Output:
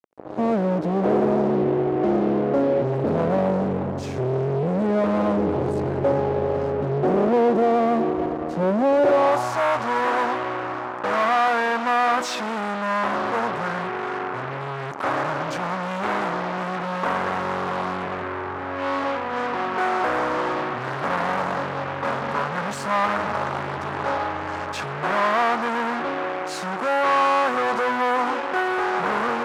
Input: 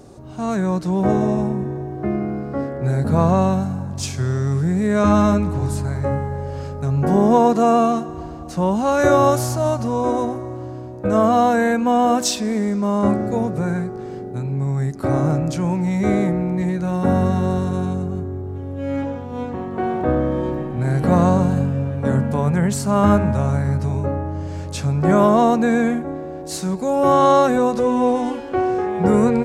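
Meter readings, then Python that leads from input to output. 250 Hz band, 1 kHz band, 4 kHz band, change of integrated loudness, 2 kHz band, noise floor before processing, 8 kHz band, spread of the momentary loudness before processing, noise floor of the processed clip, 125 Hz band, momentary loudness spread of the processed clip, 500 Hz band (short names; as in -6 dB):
-7.5 dB, -0.5 dB, -0.5 dB, -3.5 dB, +5.5 dB, -31 dBFS, -10.5 dB, 12 LU, -30 dBFS, -11.0 dB, 8 LU, -2.5 dB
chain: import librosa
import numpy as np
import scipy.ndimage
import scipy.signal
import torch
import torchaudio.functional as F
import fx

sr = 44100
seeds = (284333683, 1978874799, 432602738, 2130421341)

y = fx.fuzz(x, sr, gain_db=33.0, gate_db=-34.0)
y = fx.filter_sweep_bandpass(y, sr, from_hz=460.0, to_hz=1200.0, start_s=8.97, end_s=9.54, q=1.3)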